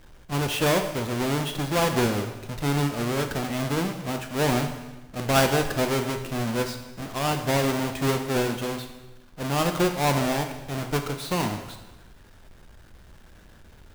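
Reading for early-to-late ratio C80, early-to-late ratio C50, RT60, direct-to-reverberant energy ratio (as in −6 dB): 10.0 dB, 8.0 dB, 1.1 s, 5.5 dB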